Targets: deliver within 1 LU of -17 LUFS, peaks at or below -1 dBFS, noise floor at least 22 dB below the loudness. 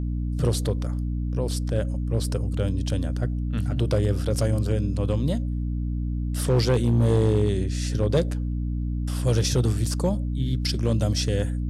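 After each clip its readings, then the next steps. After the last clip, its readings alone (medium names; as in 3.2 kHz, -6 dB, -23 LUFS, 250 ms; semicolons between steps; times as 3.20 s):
clipped samples 0.6%; clipping level -13.5 dBFS; hum 60 Hz; highest harmonic 300 Hz; hum level -24 dBFS; loudness -25.0 LUFS; peak level -13.5 dBFS; loudness target -17.0 LUFS
-> clip repair -13.5 dBFS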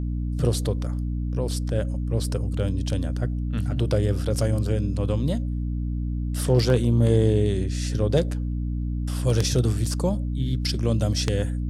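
clipped samples 0.0%; hum 60 Hz; highest harmonic 300 Hz; hum level -24 dBFS
-> hum notches 60/120/180/240/300 Hz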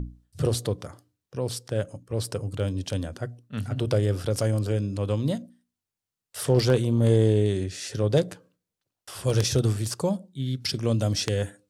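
hum not found; loudness -26.5 LUFS; peak level -5.5 dBFS; loudness target -17.0 LUFS
-> trim +9.5 dB; peak limiter -1 dBFS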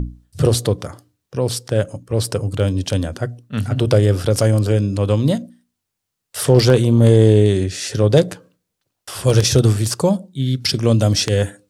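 loudness -17.0 LUFS; peak level -1.0 dBFS; noise floor -79 dBFS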